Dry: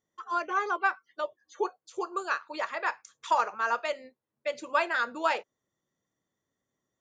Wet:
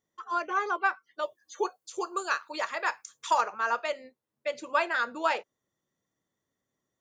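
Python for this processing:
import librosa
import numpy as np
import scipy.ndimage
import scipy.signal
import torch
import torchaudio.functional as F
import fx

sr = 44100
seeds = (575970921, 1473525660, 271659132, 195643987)

y = fx.high_shelf(x, sr, hz=fx.line((1.21, 4100.0), (3.4, 6200.0)), db=12.0, at=(1.21, 3.4), fade=0.02)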